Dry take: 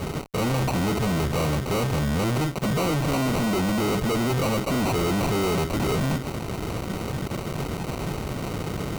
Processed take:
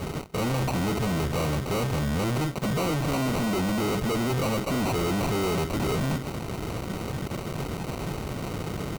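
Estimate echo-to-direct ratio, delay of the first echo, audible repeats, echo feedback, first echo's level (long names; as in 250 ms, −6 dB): −20.5 dB, 229 ms, 1, 41%, −21.5 dB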